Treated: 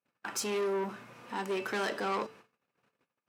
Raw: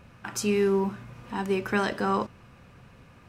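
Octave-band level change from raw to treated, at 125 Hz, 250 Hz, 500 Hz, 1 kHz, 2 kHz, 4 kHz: -14.0, -11.5, -6.5, -5.0, -4.5, -2.0 dB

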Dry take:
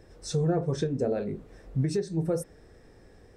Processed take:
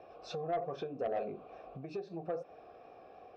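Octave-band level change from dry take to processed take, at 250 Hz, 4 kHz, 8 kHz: -15.5 dB, -9.5 dB, under -20 dB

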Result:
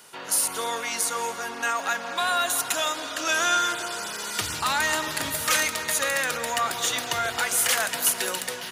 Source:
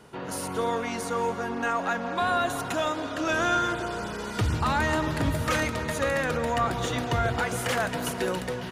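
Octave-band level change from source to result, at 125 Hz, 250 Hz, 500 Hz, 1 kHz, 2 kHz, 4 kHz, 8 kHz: -14.5, -9.0, -4.0, +0.5, +3.5, +8.5, +13.5 dB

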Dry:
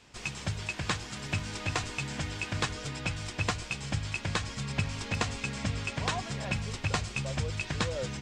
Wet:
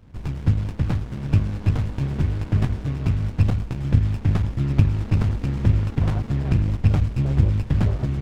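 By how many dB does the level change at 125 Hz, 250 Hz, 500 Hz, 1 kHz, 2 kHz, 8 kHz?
+15.5 dB, +12.0 dB, +3.5 dB, -1.5 dB, -6.0 dB, under -10 dB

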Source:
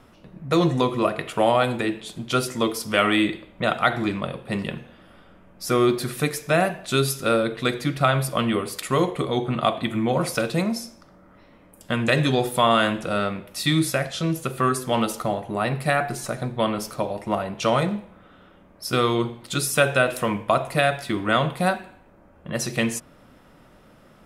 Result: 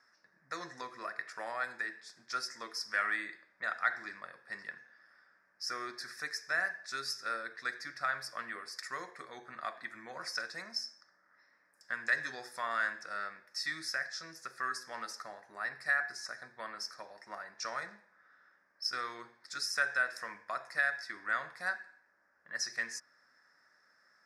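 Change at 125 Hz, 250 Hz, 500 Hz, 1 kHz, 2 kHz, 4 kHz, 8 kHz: -37.5, -31.5, -25.0, -15.0, -6.0, -12.5, -13.0 dB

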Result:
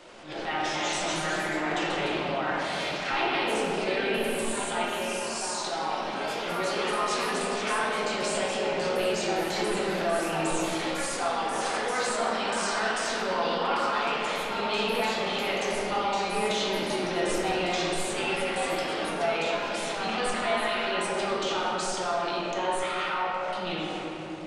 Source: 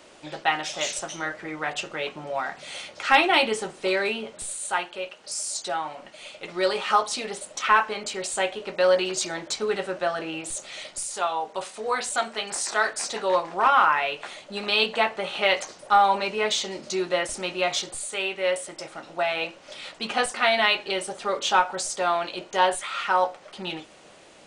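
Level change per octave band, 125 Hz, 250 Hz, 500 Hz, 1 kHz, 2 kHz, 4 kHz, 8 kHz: +5.5, +3.5, -1.5, -4.0, -3.0, -3.0, -4.0 dB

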